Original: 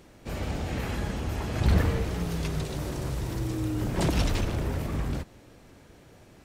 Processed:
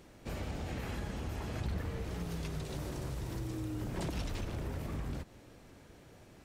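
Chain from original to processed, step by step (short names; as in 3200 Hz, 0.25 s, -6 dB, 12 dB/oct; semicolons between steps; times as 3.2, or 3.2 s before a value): compressor 3:1, threshold -33 dBFS, peak gain reduction 12.5 dB; gain -3.5 dB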